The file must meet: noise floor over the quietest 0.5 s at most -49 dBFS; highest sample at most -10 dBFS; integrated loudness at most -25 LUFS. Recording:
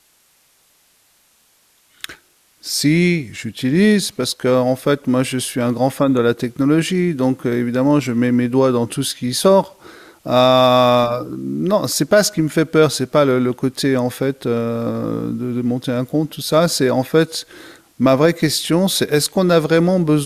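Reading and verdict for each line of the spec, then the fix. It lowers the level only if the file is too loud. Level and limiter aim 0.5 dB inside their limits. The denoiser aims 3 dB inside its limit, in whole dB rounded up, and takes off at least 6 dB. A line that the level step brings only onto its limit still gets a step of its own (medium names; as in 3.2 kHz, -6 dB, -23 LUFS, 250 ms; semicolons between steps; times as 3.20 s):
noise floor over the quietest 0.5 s -57 dBFS: pass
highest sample -2.5 dBFS: fail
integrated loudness -16.5 LUFS: fail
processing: trim -9 dB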